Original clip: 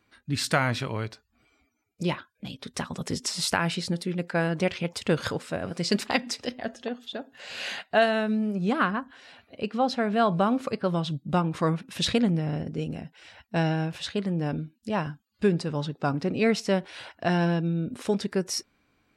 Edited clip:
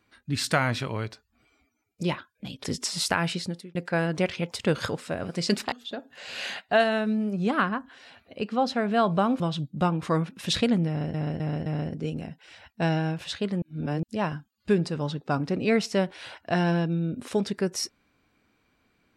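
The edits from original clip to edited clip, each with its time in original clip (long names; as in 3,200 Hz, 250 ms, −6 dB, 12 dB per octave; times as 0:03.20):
0:02.64–0:03.06: remove
0:03.77–0:04.17: fade out
0:06.14–0:06.94: remove
0:10.62–0:10.92: remove
0:12.40–0:12.66: repeat, 4 plays
0:14.36–0:14.77: reverse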